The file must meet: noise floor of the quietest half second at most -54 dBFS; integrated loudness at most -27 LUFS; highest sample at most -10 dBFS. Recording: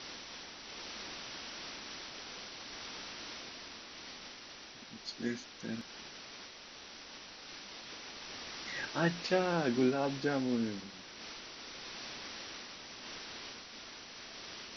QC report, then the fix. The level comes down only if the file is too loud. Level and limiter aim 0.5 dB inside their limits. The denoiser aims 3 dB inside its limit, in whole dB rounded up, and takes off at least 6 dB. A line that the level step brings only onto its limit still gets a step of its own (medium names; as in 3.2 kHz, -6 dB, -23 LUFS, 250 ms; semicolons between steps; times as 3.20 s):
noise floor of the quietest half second -51 dBFS: fail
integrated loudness -39.5 LUFS: pass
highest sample -18.0 dBFS: pass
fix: noise reduction 6 dB, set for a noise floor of -51 dBFS